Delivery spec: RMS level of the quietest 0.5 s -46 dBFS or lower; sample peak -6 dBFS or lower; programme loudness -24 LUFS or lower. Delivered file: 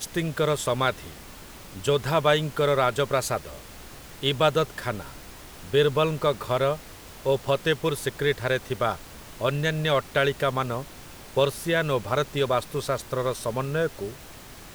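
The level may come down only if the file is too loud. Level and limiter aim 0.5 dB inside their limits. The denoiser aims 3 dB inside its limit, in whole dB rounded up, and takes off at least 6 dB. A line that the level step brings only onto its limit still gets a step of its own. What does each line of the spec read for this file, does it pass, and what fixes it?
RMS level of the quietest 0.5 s -44 dBFS: fail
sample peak -6.5 dBFS: pass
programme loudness -25.5 LUFS: pass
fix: noise reduction 6 dB, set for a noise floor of -44 dBFS

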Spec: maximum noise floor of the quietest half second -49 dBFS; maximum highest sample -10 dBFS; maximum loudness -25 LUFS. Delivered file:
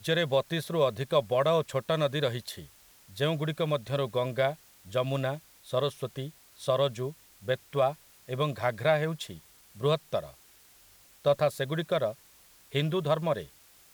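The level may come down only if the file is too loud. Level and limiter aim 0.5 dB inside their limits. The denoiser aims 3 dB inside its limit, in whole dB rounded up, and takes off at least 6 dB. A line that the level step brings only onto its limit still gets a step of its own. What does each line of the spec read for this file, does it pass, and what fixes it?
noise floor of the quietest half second -58 dBFS: pass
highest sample -12.0 dBFS: pass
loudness -30.0 LUFS: pass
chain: none needed

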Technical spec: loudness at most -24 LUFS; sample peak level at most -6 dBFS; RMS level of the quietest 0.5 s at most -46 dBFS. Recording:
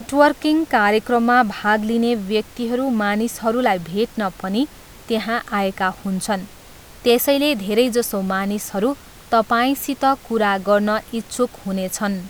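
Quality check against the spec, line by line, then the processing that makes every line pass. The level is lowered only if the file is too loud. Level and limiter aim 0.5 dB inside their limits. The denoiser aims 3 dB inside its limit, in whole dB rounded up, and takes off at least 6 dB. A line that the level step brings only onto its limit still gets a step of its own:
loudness -19.5 LUFS: fail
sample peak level -2.5 dBFS: fail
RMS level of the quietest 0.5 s -42 dBFS: fail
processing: trim -5 dB

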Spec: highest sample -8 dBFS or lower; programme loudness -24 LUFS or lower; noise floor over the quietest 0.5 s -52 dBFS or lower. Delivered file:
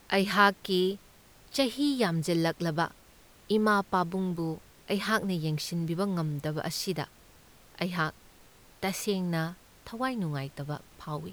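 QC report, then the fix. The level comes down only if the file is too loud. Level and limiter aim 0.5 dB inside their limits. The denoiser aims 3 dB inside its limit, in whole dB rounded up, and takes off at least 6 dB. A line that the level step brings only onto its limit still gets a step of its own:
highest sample -9.5 dBFS: pass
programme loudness -30.0 LUFS: pass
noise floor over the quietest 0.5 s -57 dBFS: pass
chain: none needed

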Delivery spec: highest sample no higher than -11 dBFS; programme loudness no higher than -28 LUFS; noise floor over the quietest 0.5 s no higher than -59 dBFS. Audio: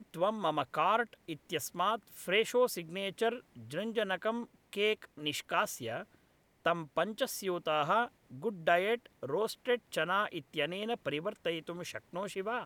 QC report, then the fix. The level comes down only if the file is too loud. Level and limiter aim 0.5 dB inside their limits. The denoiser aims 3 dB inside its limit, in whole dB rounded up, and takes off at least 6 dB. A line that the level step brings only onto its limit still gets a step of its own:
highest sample -15.0 dBFS: pass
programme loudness -34.0 LUFS: pass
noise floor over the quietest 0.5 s -69 dBFS: pass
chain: none needed

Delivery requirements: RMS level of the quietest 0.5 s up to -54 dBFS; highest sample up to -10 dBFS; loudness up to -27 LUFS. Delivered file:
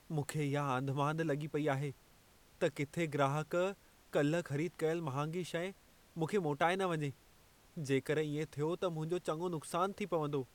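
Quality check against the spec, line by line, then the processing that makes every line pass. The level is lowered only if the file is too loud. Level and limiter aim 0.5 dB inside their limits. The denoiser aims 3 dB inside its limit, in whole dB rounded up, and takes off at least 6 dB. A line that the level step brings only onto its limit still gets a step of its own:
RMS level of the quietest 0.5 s -65 dBFS: pass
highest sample -17.5 dBFS: pass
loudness -37.0 LUFS: pass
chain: none needed

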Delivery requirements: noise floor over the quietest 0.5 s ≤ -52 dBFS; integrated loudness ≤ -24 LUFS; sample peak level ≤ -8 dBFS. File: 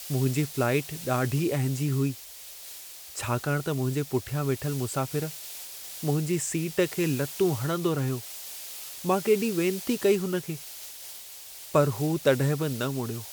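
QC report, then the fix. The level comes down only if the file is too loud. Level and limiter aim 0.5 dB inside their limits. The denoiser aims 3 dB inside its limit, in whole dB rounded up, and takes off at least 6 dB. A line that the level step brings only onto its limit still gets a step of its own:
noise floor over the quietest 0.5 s -44 dBFS: fail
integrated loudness -28.0 LUFS: pass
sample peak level -9.5 dBFS: pass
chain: noise reduction 11 dB, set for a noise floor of -44 dBFS

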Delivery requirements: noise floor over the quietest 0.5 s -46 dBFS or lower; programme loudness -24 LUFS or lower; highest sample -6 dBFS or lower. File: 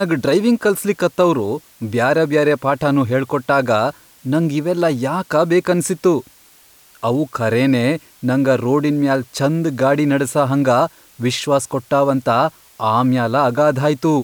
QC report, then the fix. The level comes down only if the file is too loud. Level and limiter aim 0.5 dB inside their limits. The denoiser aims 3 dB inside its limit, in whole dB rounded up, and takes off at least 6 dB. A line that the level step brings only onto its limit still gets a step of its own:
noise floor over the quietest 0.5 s -49 dBFS: pass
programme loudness -17.0 LUFS: fail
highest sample -4.5 dBFS: fail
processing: trim -7.5 dB

